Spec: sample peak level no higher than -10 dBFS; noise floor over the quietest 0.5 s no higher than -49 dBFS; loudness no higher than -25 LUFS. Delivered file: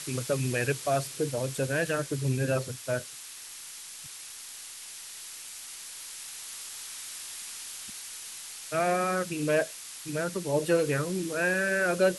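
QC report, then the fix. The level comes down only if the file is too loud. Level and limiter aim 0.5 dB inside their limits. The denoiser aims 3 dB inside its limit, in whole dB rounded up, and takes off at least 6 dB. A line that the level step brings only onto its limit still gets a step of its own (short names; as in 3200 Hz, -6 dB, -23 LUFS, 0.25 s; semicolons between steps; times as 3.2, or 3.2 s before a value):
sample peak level -13.5 dBFS: OK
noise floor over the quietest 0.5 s -44 dBFS: fail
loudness -31.0 LUFS: OK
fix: denoiser 8 dB, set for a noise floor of -44 dBFS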